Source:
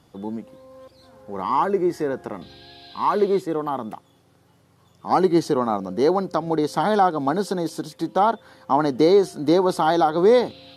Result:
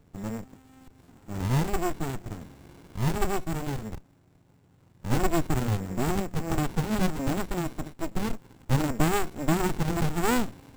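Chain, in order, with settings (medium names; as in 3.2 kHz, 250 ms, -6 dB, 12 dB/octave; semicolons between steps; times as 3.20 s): sorted samples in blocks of 8 samples; careless resampling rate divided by 6×, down none, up hold; sliding maximum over 65 samples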